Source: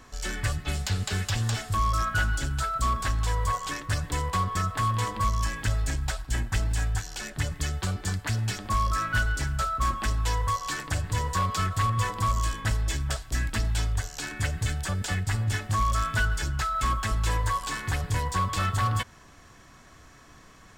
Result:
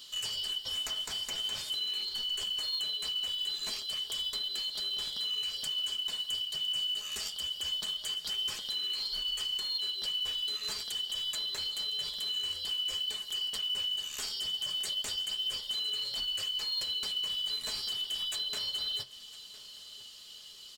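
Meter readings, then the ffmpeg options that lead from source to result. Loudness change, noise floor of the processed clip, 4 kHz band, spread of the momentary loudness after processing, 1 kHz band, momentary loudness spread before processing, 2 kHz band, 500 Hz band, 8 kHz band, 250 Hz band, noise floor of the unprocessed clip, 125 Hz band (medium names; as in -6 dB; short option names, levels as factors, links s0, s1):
-4.0 dB, -49 dBFS, +10.0 dB, 3 LU, -25.5 dB, 5 LU, -17.5 dB, -14.5 dB, -6.5 dB, under -20 dB, -52 dBFS, under -30 dB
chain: -filter_complex "[0:a]afftfilt=real='real(if(lt(b,272),68*(eq(floor(b/68),0)*2+eq(floor(b/68),1)*3+eq(floor(b/68),2)*0+eq(floor(b/68),3)*1)+mod(b,68),b),0)':imag='imag(if(lt(b,272),68*(eq(floor(b/68),0)*2+eq(floor(b/68),1)*3+eq(floor(b/68),2)*0+eq(floor(b/68),3)*1)+mod(b,68),b),0)':win_size=2048:overlap=0.75,lowshelf=f=120:g=3,aecho=1:1:4.7:0.47,acrossover=split=3000[s0][s1];[s1]acompressor=threshold=0.02:ratio=10[s2];[s0][s2]amix=inputs=2:normalize=0,alimiter=level_in=1.41:limit=0.0631:level=0:latency=1:release=128,volume=0.708,flanger=delay=7.7:depth=5.3:regen=-62:speed=0.45:shape=triangular,crystalizer=i=2:c=0,acrusher=bits=6:mode=log:mix=0:aa=0.000001,asplit=2[s3][s4];[s4]aecho=0:1:1008:0.126[s5];[s3][s5]amix=inputs=2:normalize=0"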